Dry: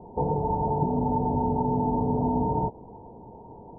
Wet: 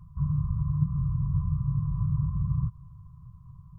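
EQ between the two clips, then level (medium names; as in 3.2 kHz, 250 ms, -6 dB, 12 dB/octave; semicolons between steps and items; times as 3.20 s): brick-wall FIR band-stop 170–1000 Hz; +5.5 dB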